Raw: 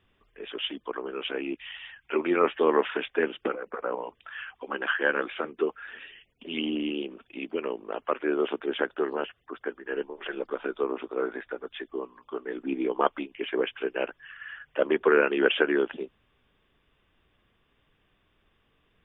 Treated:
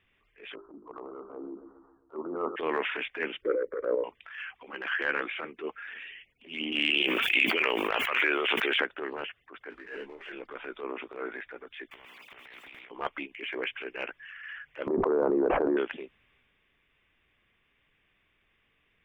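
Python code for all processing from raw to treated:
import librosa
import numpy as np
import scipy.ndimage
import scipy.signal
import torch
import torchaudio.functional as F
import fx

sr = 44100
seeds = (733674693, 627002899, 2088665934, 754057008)

y = fx.chain(x, sr, fx.steep_lowpass(hz=1300.0, slope=96),
    fx.hum_notches(base_hz=50, count=8),
    fx.echo_feedback(ms=135, feedback_pct=54, wet_db=-15.0), at=(0.55, 2.56))
y = fx.chain(y, sr, fx.low_shelf_res(hz=710.0, db=8.5, q=3.0),
    fx.fixed_phaser(hz=720.0, stages=6), at=(3.42, 4.04))
y = fx.chain(y, sr, fx.tilt_eq(slope=4.5),
    fx.env_flatten(amount_pct=100), at=(6.72, 8.81))
y = fx.chain(y, sr, fx.law_mismatch(coded='mu'),
    fx.air_absorb(metres=54.0),
    fx.detune_double(cents=25), at=(9.7, 10.32))
y = fx.chain(y, sr, fx.highpass(hz=630.0, slope=12),
    fx.over_compress(threshold_db=-45.0, ratio=-0.5),
    fx.spectral_comp(ratio=4.0), at=(11.91, 12.91))
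y = fx.chain(y, sr, fx.steep_lowpass(hz=970.0, slope=36),
    fx.env_flatten(amount_pct=100), at=(14.87, 15.77))
y = fx.peak_eq(y, sr, hz=2200.0, db=12.5, octaves=0.8)
y = fx.transient(y, sr, attack_db=-10, sustain_db=3)
y = F.gain(torch.from_numpy(y), -6.0).numpy()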